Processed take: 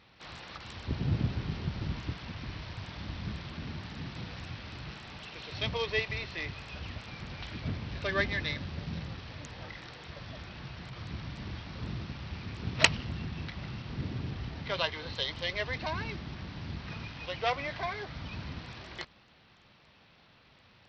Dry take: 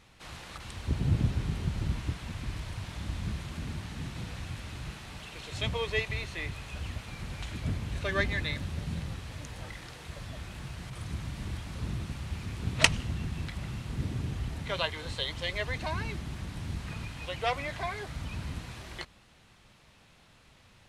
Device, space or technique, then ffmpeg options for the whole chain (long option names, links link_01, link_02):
Bluetooth headset: -af "highpass=frequency=110:poles=1,bandreject=frequency=5100:width=11,aresample=16000,aresample=44100" -ar 44100 -c:a sbc -b:a 64k